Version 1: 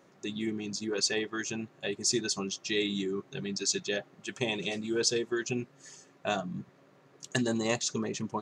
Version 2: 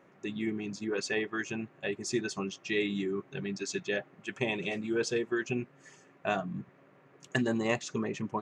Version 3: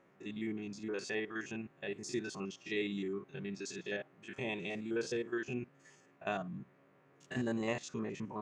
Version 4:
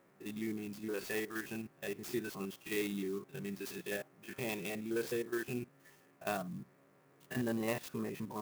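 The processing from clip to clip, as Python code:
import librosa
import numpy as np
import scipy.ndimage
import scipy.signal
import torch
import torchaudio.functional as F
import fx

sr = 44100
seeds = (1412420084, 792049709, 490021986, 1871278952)

y1 = fx.high_shelf_res(x, sr, hz=3200.0, db=-8.5, q=1.5)
y2 = fx.spec_steps(y1, sr, hold_ms=50)
y2 = y2 * librosa.db_to_amplitude(-5.0)
y3 = fx.clock_jitter(y2, sr, seeds[0], jitter_ms=0.038)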